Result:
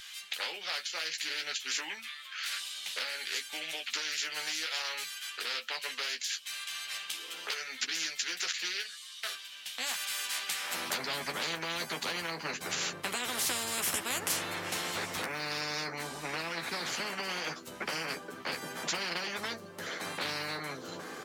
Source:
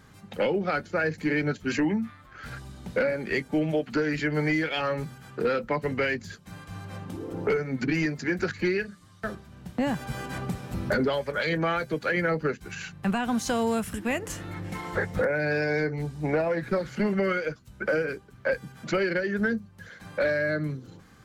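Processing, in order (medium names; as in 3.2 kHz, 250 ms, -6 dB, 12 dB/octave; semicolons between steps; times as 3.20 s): high-pass sweep 3 kHz -> 400 Hz, 10.45–11.25 s; doubling 12 ms -5.5 dB; spectrum-flattening compressor 10:1; trim -3 dB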